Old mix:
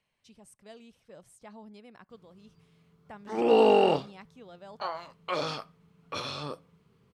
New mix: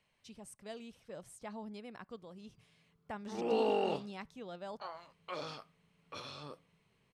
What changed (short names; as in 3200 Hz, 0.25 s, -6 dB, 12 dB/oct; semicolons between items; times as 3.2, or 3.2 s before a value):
speech +3.0 dB; background -11.0 dB